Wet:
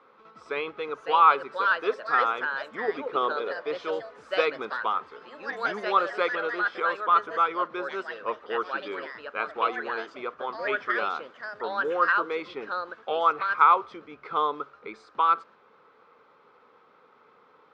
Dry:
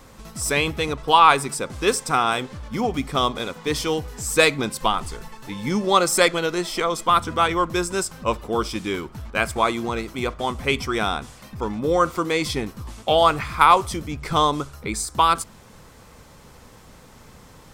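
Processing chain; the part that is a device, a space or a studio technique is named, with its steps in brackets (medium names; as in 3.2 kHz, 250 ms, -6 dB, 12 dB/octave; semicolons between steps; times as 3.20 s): phone earpiece (cabinet simulation 440–3100 Hz, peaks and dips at 440 Hz +7 dB, 650 Hz -5 dB, 1.3 kHz +9 dB, 1.8 kHz -6 dB, 2.9 kHz -6 dB); 2.88–3.62 s: peaking EQ 430 Hz +7.5 dB 0.83 oct; ever faster or slower copies 638 ms, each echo +3 st, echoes 2, each echo -6 dB; trim -8 dB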